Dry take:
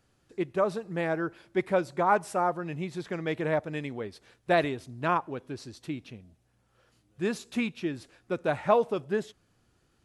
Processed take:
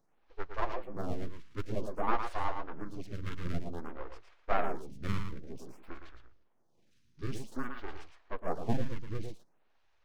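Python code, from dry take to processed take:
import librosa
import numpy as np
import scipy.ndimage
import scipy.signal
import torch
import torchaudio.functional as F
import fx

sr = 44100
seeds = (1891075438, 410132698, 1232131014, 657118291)

p1 = fx.pitch_heads(x, sr, semitones=-10.0)
p2 = fx.spec_repair(p1, sr, seeds[0], start_s=1.46, length_s=0.31, low_hz=330.0, high_hz=820.0, source='both')
p3 = np.abs(p2)
p4 = p3 + fx.echo_single(p3, sr, ms=113, db=-7.0, dry=0)
y = fx.stagger_phaser(p4, sr, hz=0.53)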